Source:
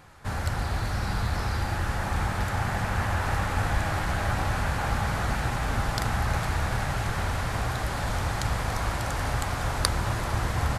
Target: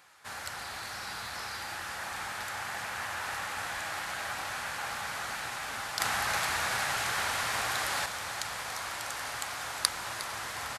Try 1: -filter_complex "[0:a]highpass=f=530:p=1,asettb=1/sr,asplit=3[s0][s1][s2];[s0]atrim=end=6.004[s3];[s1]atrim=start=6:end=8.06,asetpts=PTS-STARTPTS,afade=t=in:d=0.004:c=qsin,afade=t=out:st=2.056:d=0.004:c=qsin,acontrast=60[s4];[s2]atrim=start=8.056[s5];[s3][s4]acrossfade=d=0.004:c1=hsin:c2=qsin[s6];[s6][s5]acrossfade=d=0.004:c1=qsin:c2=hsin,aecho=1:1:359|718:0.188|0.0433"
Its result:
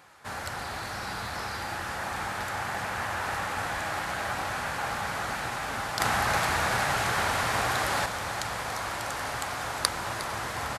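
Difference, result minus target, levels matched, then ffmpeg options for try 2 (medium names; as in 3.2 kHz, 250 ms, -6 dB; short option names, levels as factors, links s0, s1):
500 Hz band +5.0 dB
-filter_complex "[0:a]highpass=f=2000:p=1,asettb=1/sr,asplit=3[s0][s1][s2];[s0]atrim=end=6.004[s3];[s1]atrim=start=6:end=8.06,asetpts=PTS-STARTPTS,afade=t=in:d=0.004:c=qsin,afade=t=out:st=2.056:d=0.004:c=qsin,acontrast=60[s4];[s2]atrim=start=8.056[s5];[s3][s4]acrossfade=d=0.004:c1=hsin:c2=qsin[s6];[s6][s5]acrossfade=d=0.004:c1=qsin:c2=hsin,aecho=1:1:359|718:0.188|0.0433"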